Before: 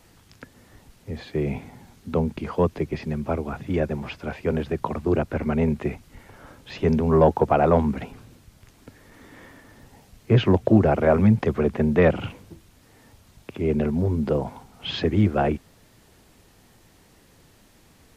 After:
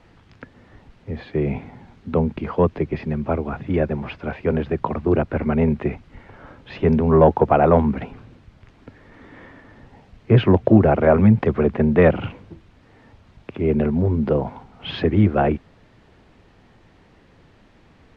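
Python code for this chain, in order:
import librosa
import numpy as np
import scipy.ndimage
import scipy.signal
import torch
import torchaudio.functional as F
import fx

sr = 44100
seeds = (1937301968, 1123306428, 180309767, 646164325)

y = scipy.signal.sosfilt(scipy.signal.butter(2, 2800.0, 'lowpass', fs=sr, output='sos'), x)
y = y * librosa.db_to_amplitude(3.5)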